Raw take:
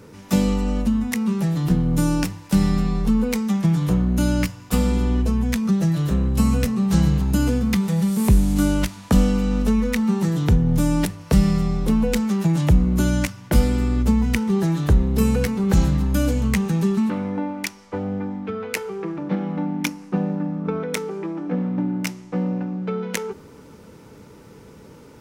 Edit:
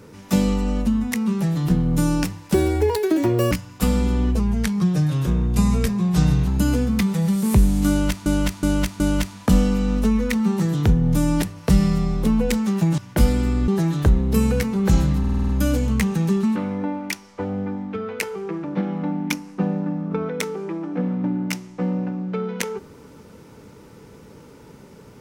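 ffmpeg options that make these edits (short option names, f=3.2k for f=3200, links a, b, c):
-filter_complex "[0:a]asplit=16[a][b][c][d][e][f][g][h][i][j][k][l][m][n][o][p];[a]atrim=end=2.544[q];[b]atrim=start=2.54:end=4.42,asetpts=PTS-STARTPTS,asetrate=85113,aresample=44100[r];[c]atrim=start=4.416:end=5.304[s];[d]atrim=start=5.3:end=7.21,asetpts=PTS-STARTPTS,asetrate=40572,aresample=44100,atrim=end_sample=91555,asetpts=PTS-STARTPTS[t];[e]atrim=start=7.206:end=9.002[u];[f]atrim=start=8.628:end=9.002[v];[g]atrim=start=8.628:end=9.002[w];[h]atrim=start=8.628:end=12.612[x];[i]atrim=start=13.328:end=14.032[y];[j]atrim=start=14.518:end=16.082[z];[k]atrim=start=16.028:end=16.082[aa];[l]atrim=start=16.028:end=16.082[ab];[m]atrim=start=16.028:end=16.082[ac];[n]atrim=start=16.028:end=16.082[ad];[o]atrim=start=16.028:end=16.082[ae];[p]atrim=start=16.028[af];[q][r]acrossfade=d=0.004:c1=hsin:c2=hsin[ag];[ag][s]acrossfade=d=0.004:c1=hsin:c2=hsin[ah];[ah][t]acrossfade=d=0.004:c1=hsin:c2=hsin[ai];[ai][u]acrossfade=d=0.004:c1=hsin:c2=hsin[aj];[aj][v]acrossfade=d=0.004:c1=hsin:c2=hsin[ak];[ak][w]acrossfade=d=0.004:c1=hsin:c2=hsin[al];[al][x]acrossfade=d=0.004:c1=hsin:c2=hsin[am];[am][y]acrossfade=d=0.004:c1=hsin:c2=hsin[an];[an][z]acrossfade=d=0.004:c1=hsin:c2=hsin[ao];[ao][aa]acrossfade=d=0.004:c1=hsin:c2=hsin[ap];[ap][ab]acrossfade=d=0.004:c1=hsin:c2=hsin[aq];[aq][ac]acrossfade=d=0.004:c1=hsin:c2=hsin[ar];[ar][ad]acrossfade=d=0.004:c1=hsin:c2=hsin[as];[as][ae]acrossfade=d=0.004:c1=hsin:c2=hsin[at];[at][af]acrossfade=d=0.004:c1=hsin:c2=hsin"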